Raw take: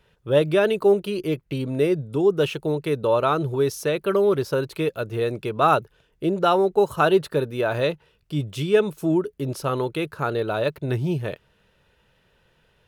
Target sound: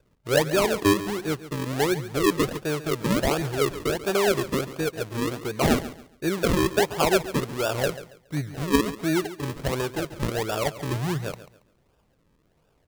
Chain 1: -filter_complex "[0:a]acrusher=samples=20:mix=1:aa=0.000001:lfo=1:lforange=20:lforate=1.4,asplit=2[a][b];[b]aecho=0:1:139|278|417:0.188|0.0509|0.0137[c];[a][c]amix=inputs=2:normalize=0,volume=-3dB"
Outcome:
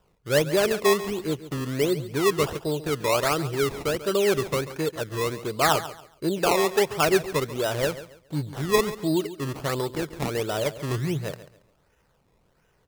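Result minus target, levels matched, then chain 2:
decimation with a swept rate: distortion -11 dB
-filter_complex "[0:a]acrusher=samples=42:mix=1:aa=0.000001:lfo=1:lforange=42:lforate=1.4,asplit=2[a][b];[b]aecho=0:1:139|278|417:0.188|0.0509|0.0137[c];[a][c]amix=inputs=2:normalize=0,volume=-3dB"

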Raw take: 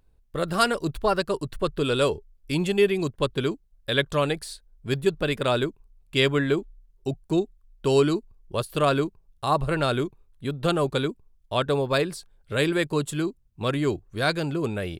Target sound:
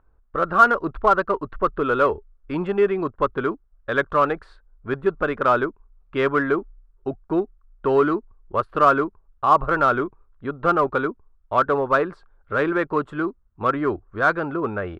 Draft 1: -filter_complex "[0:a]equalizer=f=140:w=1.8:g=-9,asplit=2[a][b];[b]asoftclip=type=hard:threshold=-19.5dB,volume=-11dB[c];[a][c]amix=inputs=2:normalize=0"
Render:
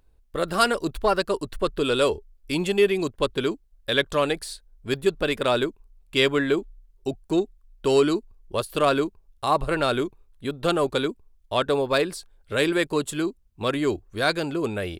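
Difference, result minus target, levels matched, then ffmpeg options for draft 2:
1000 Hz band -5.0 dB
-filter_complex "[0:a]lowpass=f=1.3k:t=q:w=3.7,equalizer=f=140:w=1.8:g=-9,asplit=2[a][b];[b]asoftclip=type=hard:threshold=-19.5dB,volume=-11dB[c];[a][c]amix=inputs=2:normalize=0"

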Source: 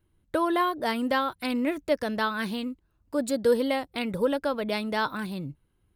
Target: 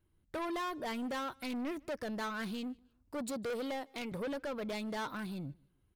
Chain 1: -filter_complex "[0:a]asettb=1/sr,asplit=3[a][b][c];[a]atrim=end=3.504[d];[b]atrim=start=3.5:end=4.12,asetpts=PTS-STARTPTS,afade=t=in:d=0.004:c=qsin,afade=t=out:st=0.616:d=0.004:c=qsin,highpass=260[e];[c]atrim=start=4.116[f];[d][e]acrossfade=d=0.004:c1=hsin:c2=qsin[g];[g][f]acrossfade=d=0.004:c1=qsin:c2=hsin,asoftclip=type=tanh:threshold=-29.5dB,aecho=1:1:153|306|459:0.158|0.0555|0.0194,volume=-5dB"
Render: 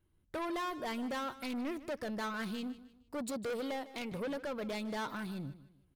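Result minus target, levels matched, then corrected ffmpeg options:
echo-to-direct +11.5 dB
-filter_complex "[0:a]asettb=1/sr,asplit=3[a][b][c];[a]atrim=end=3.504[d];[b]atrim=start=3.5:end=4.12,asetpts=PTS-STARTPTS,afade=t=in:d=0.004:c=qsin,afade=t=out:st=0.616:d=0.004:c=qsin,highpass=260[e];[c]atrim=start=4.116[f];[d][e]acrossfade=d=0.004:c1=hsin:c2=qsin[g];[g][f]acrossfade=d=0.004:c1=qsin:c2=hsin,asoftclip=type=tanh:threshold=-29.5dB,aecho=1:1:153|306:0.0422|0.0148,volume=-5dB"

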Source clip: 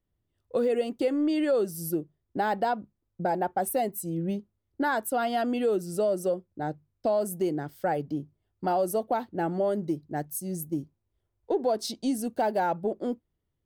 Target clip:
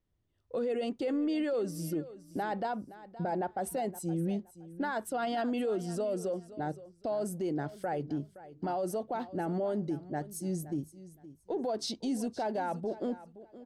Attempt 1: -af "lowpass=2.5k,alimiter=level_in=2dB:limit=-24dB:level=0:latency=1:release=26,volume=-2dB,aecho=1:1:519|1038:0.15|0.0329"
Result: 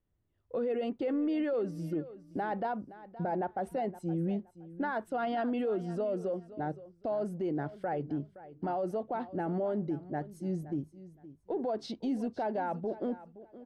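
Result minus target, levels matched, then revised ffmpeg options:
8000 Hz band -17.0 dB
-af "lowpass=7.2k,alimiter=level_in=2dB:limit=-24dB:level=0:latency=1:release=26,volume=-2dB,aecho=1:1:519|1038:0.15|0.0329"

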